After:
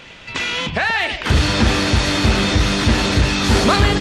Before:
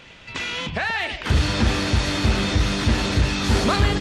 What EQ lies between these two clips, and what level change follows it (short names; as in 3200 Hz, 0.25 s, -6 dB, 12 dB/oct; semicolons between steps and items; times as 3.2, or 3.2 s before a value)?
bell 64 Hz -3 dB 2.8 oct; +6.0 dB